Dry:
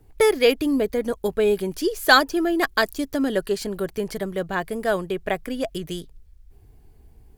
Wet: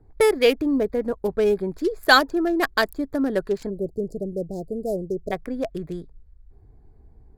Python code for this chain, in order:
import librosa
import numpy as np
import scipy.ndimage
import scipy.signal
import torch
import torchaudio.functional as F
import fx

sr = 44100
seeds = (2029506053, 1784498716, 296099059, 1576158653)

y = fx.wiener(x, sr, points=15)
y = fx.cheby2_bandstop(y, sr, low_hz=1100.0, high_hz=3000.0, order=4, stop_db=50, at=(3.69, 5.31), fade=0.02)